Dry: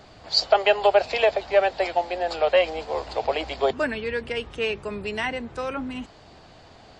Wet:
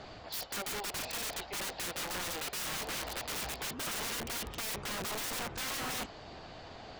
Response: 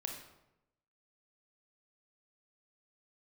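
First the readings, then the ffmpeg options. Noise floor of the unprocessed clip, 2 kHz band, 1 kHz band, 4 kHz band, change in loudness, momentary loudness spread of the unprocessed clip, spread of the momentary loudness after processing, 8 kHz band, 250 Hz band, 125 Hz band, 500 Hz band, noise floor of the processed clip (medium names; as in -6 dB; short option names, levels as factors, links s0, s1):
-50 dBFS, -10.5 dB, -15.0 dB, -8.5 dB, -12.5 dB, 11 LU, 5 LU, no reading, -11.0 dB, -5.0 dB, -22.5 dB, -49 dBFS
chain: -af "lowpass=6200,equalizer=f=82:w=0.33:g=-2.5,areverse,acompressor=threshold=0.0398:ratio=5,areverse,aeval=exprs='0.112*(cos(1*acos(clip(val(0)/0.112,-1,1)))-cos(1*PI/2))+0.002*(cos(6*acos(clip(val(0)/0.112,-1,1)))-cos(6*PI/2))':c=same,aeval=exprs='(mod(50.1*val(0)+1,2)-1)/50.1':c=same,volume=1.19"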